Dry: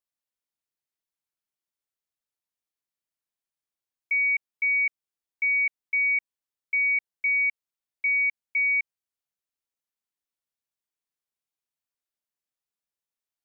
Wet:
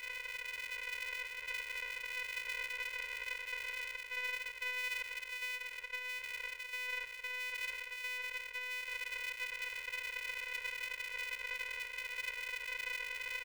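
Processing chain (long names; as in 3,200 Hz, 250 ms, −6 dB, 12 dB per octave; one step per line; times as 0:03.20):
compressor on every frequency bin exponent 0.2
parametric band 2,000 Hz −12.5 dB 2.1 octaves
reversed playback
downward compressor, threshold −49 dBFS, peak gain reduction 14.5 dB
reversed playback
brickwall limiter −48 dBFS, peak gain reduction 8.5 dB
repeating echo 671 ms, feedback 55%, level −5 dB
ring modulator with a square carrier 250 Hz
level +11.5 dB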